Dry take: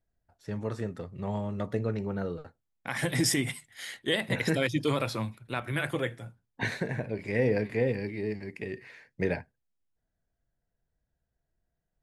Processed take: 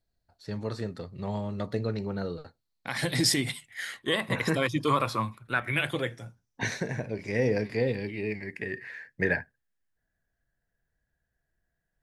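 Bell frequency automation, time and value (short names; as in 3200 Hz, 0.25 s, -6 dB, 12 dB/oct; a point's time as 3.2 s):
bell +14.5 dB 0.34 oct
3.49 s 4300 Hz
3.98 s 1100 Hz
5.41 s 1100 Hz
6.13 s 5800 Hz
7.61 s 5800 Hz
8.55 s 1700 Hz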